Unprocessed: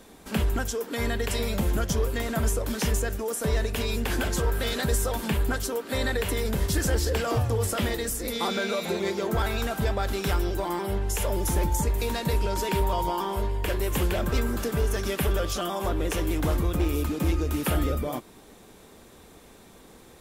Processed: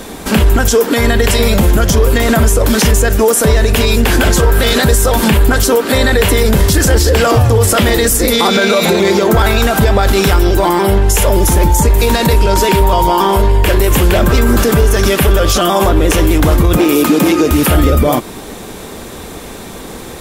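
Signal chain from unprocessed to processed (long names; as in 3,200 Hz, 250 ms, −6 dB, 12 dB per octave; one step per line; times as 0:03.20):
0:16.77–0:17.51: high-pass filter 170 Hz 24 dB per octave
boost into a limiter +23.5 dB
level −1 dB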